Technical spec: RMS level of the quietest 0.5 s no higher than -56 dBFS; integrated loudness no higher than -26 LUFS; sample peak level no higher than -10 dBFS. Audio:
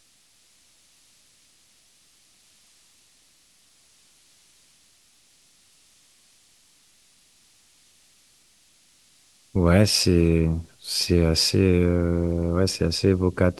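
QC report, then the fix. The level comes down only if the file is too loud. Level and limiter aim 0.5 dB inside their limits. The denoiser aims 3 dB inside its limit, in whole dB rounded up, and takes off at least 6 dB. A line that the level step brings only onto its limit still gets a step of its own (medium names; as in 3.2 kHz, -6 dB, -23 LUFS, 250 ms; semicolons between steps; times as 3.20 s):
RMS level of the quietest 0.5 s -60 dBFS: pass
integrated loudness -21.5 LUFS: fail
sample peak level -4.5 dBFS: fail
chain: trim -5 dB; peak limiter -10.5 dBFS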